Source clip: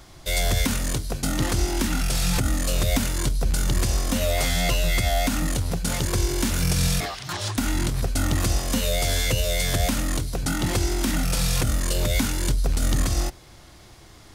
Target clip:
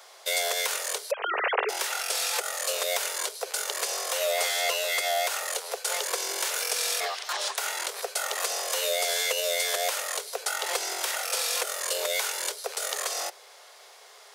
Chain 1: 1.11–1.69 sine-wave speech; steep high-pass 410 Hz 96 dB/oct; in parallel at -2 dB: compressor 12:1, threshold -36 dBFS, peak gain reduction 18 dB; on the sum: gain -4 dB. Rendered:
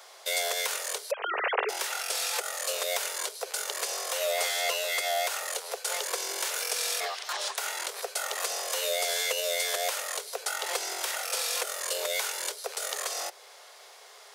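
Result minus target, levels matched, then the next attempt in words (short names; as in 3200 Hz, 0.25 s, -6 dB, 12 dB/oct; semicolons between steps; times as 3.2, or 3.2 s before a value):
compressor: peak gain reduction +8.5 dB
1.11–1.69 sine-wave speech; steep high-pass 410 Hz 96 dB/oct; in parallel at -2 dB: compressor 12:1, threshold -26.5 dBFS, peak gain reduction 9 dB; on the sum: gain -4 dB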